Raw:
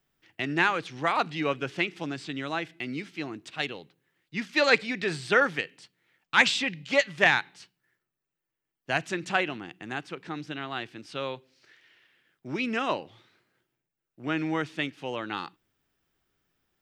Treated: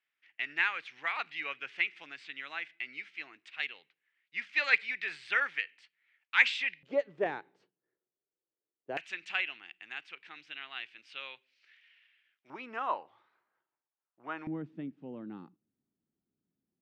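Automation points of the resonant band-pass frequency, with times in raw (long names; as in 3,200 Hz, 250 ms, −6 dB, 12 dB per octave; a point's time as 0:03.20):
resonant band-pass, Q 2.4
2,200 Hz
from 0:06.83 440 Hz
from 0:08.97 2,500 Hz
from 0:12.50 1,000 Hz
from 0:14.47 220 Hz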